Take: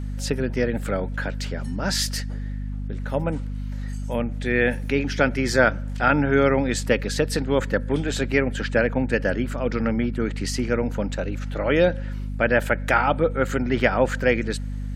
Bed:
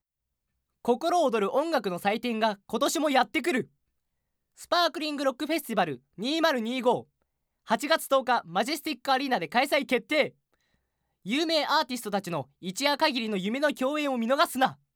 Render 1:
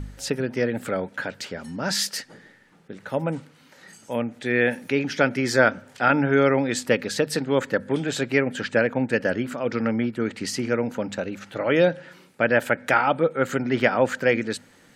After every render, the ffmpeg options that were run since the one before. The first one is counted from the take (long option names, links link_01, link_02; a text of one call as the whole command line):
ffmpeg -i in.wav -af "bandreject=frequency=50:width_type=h:width=4,bandreject=frequency=100:width_type=h:width=4,bandreject=frequency=150:width_type=h:width=4,bandreject=frequency=200:width_type=h:width=4,bandreject=frequency=250:width_type=h:width=4" out.wav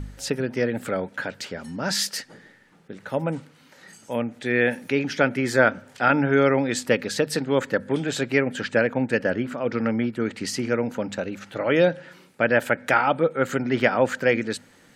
ffmpeg -i in.wav -filter_complex "[0:a]asettb=1/sr,asplit=3[link_01][link_02][link_03];[link_01]atrim=end=5.184[link_04];[link_02]atrim=start=5.18:end=5.75,asetpts=PTS-STARTPTS,afade=type=in:duration=0.004:curve=qsin,afade=type=out:start_time=0.566:duration=0.004:curve=qsin,equalizer=frequency=5300:width_type=o:width=0.64:gain=-7[link_05];[link_03]atrim=start=5.746[link_06];[link_04][link_05]acrossfade=duration=0.004:curve1=hsin:curve2=qsin[link_07];[link_07][link_06]acrossfade=duration=0.004:curve1=qsin:curve2=hsin,asettb=1/sr,asplit=3[link_08][link_09][link_10];[link_08]atrim=end=9.234[link_11];[link_09]atrim=start=9.23:end=9.81,asetpts=PTS-STARTPTS,afade=type=in:duration=0.004:curve=qsin,afade=type=out:start_time=0.576:duration=0.004:curve=qsin,aemphasis=mode=reproduction:type=cd[link_12];[link_10]atrim=start=9.806[link_13];[link_11][link_12]acrossfade=duration=0.004:curve1=hsin:curve2=qsin[link_14];[link_14][link_13]acrossfade=duration=0.004:curve1=qsin:curve2=hsin" out.wav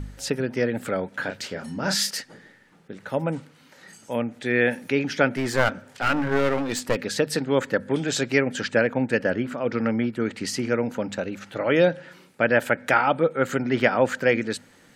ffmpeg -i in.wav -filter_complex "[0:a]asettb=1/sr,asplit=3[link_01][link_02][link_03];[link_01]atrim=end=1.104[link_04];[link_02]atrim=start=1.1:end=2.11,asetpts=PTS-STARTPTS,afade=type=in:duration=0.004:curve=qsin,afade=type=out:start_time=1.006:duration=0.004:curve=qsin,asplit=2[link_05][link_06];[link_06]adelay=31,volume=-6dB[link_07];[link_05][link_07]amix=inputs=2:normalize=0,atrim=end_sample=44541[link_08];[link_03]atrim=start=2.106[link_09];[link_04][link_08]acrossfade=duration=0.004:curve1=hsin:curve2=qsin[link_10];[link_10][link_09]acrossfade=duration=0.004:curve1=qsin:curve2=hsin,asplit=3[link_11][link_12][link_13];[link_11]afade=type=out:start_time=5.33:duration=0.02[link_14];[link_12]aeval=exprs='clip(val(0),-1,0.0473)':channel_layout=same,afade=type=in:start_time=5.33:duration=0.02,afade=type=out:start_time=6.95:duration=0.02[link_15];[link_13]afade=type=in:start_time=6.95:duration=0.02[link_16];[link_14][link_15][link_16]amix=inputs=3:normalize=0,asettb=1/sr,asplit=3[link_17][link_18][link_19];[link_17]atrim=end=8.024[link_20];[link_18]atrim=start=8.02:end=8.68,asetpts=PTS-STARTPTS,afade=type=in:duration=0.004:curve=qsin,afade=type=out:start_time=0.656:duration=0.004:curve=qsin,equalizer=frequency=5800:width=1.4:gain=7[link_21];[link_19]atrim=start=8.676[link_22];[link_20][link_21]acrossfade=duration=0.004:curve1=hsin:curve2=qsin[link_23];[link_23][link_22]acrossfade=duration=0.004:curve1=qsin:curve2=hsin" out.wav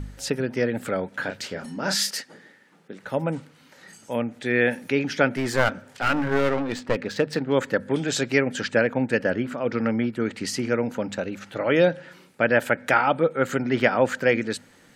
ffmpeg -i in.wav -filter_complex "[0:a]asettb=1/sr,asplit=3[link_01][link_02][link_03];[link_01]atrim=end=1.654[link_04];[link_02]atrim=start=1.65:end=3.05,asetpts=PTS-STARTPTS,afade=type=in:duration=0.004:curve=qsin,afade=type=out:start_time=1.396:duration=0.004:curve=qsin,highpass=180[link_05];[link_03]atrim=start=3.046[link_06];[link_04][link_05]acrossfade=duration=0.004:curve1=hsin:curve2=qsin[link_07];[link_07][link_06]acrossfade=duration=0.004:curve1=qsin:curve2=hsin,asettb=1/sr,asplit=3[link_08][link_09][link_10];[link_08]atrim=end=6.504[link_11];[link_09]atrim=start=6.5:end=7.53,asetpts=PTS-STARTPTS,afade=type=in:duration=0.004:curve=qsin,afade=type=out:start_time=1.026:duration=0.004:curve=qsin,adynamicsmooth=sensitivity=2:basefreq=2800[link_12];[link_10]atrim=start=7.526[link_13];[link_11][link_12]acrossfade=duration=0.004:curve1=hsin:curve2=qsin[link_14];[link_14][link_13]acrossfade=duration=0.004:curve1=qsin:curve2=hsin" out.wav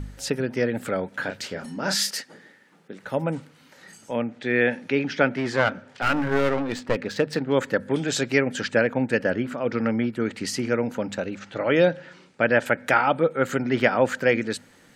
ffmpeg -i in.wav -filter_complex "[0:a]asettb=1/sr,asplit=3[link_01][link_02][link_03];[link_01]atrim=end=4.114[link_04];[link_02]atrim=start=4.11:end=6.02,asetpts=PTS-STARTPTS,afade=type=in:duration=0.004:curve=qsin,afade=type=out:start_time=1.906:duration=0.004:curve=qsin,highpass=100,lowpass=4900[link_05];[link_03]atrim=start=6.016[link_06];[link_04][link_05]acrossfade=duration=0.004:curve1=hsin:curve2=qsin[link_07];[link_07][link_06]acrossfade=duration=0.004:curve1=qsin:curve2=hsin,asettb=1/sr,asplit=3[link_08][link_09][link_10];[link_08]atrim=end=11.354[link_11];[link_09]atrim=start=11.35:end=12.66,asetpts=PTS-STARTPTS,afade=type=in:duration=0.004:curve=qsin,afade=type=out:start_time=1.306:duration=0.004:curve=qsin,lowpass=frequency=7600:width=0.5412,lowpass=frequency=7600:width=1.3066[link_12];[link_10]atrim=start=12.656[link_13];[link_11][link_12]acrossfade=duration=0.004:curve1=hsin:curve2=qsin[link_14];[link_14][link_13]acrossfade=duration=0.004:curve1=qsin:curve2=hsin" out.wav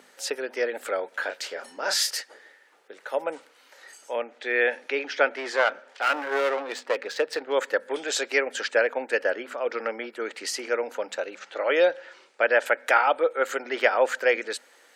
ffmpeg -i in.wav -af "highpass=frequency=430:width=0.5412,highpass=frequency=430:width=1.3066" out.wav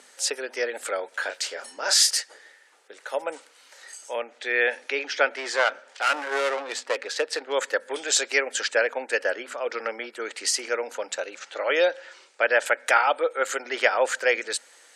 ffmpeg -i in.wav -af "lowpass=frequency=9400:width=0.5412,lowpass=frequency=9400:width=1.3066,aemphasis=mode=production:type=bsi" out.wav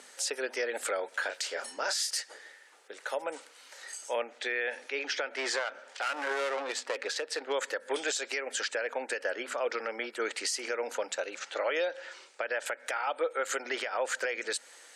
ffmpeg -i in.wav -af "acompressor=threshold=-23dB:ratio=6,alimiter=limit=-21.5dB:level=0:latency=1:release=144" out.wav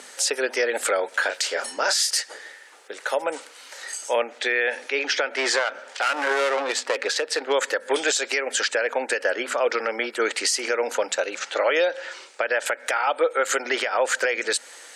ffmpeg -i in.wav -af "volume=9.5dB" out.wav